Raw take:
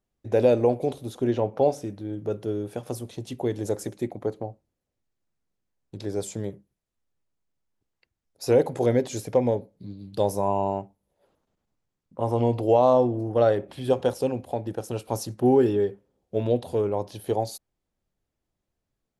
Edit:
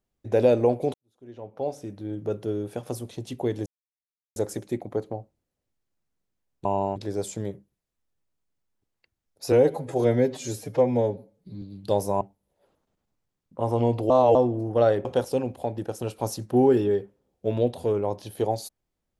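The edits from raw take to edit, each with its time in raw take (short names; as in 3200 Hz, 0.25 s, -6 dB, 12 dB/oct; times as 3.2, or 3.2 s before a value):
0.94–2.08 fade in quadratic
3.66 insert silence 0.70 s
8.51–9.91 stretch 1.5×
10.5–10.81 move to 5.95
12.7–12.95 reverse
13.65–13.94 cut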